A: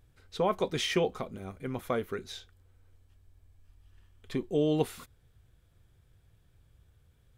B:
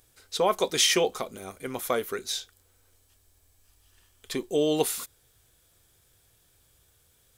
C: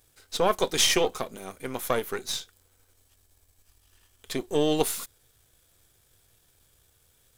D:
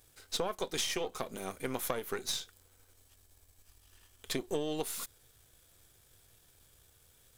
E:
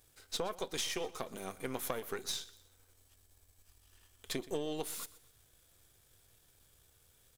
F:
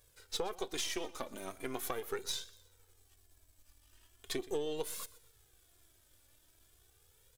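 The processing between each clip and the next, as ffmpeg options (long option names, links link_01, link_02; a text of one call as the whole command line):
ffmpeg -i in.wav -af "bass=frequency=250:gain=-12,treble=frequency=4000:gain=13,volume=5dB" out.wav
ffmpeg -i in.wav -af "aeval=exprs='if(lt(val(0),0),0.447*val(0),val(0))':channel_layout=same,volume=2.5dB" out.wav
ffmpeg -i in.wav -af "acompressor=threshold=-30dB:ratio=12" out.wav
ffmpeg -i in.wav -af "aecho=1:1:122|244|366:0.119|0.0416|0.0146,volume=-3dB" out.wav
ffmpeg -i in.wav -af "flanger=delay=1.8:depth=1.7:regen=25:speed=0.4:shape=triangular,volume=3dB" out.wav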